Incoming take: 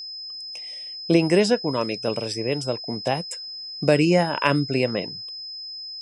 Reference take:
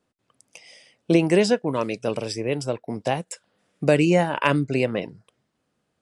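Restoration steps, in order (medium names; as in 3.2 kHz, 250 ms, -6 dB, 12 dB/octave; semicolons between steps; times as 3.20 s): band-stop 5.1 kHz, Q 30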